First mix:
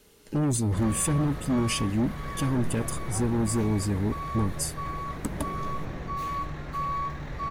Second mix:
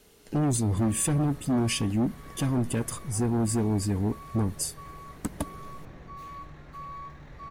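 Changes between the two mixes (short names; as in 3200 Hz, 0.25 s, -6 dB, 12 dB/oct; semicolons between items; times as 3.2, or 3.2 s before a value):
speech: remove Butterworth band-stop 710 Hz, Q 7.5; background -10.5 dB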